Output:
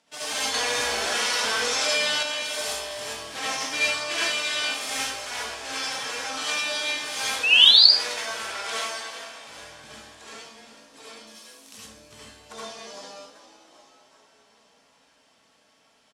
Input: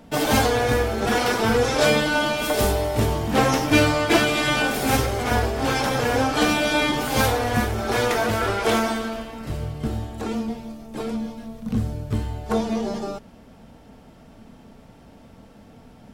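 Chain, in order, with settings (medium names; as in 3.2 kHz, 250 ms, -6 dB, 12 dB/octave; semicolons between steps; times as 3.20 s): 11.27–11.78 s: RIAA curve recording; frequency-shifting echo 387 ms, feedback 59%, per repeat +51 Hz, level -13 dB; 7.43–7.85 s: painted sound rise 2.5–5 kHz -12 dBFS; frequency weighting ITU-R 468; reverberation RT60 0.40 s, pre-delay 65 ms, DRR -6.5 dB; 0.54–2.23 s: level flattener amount 70%; trim -17.5 dB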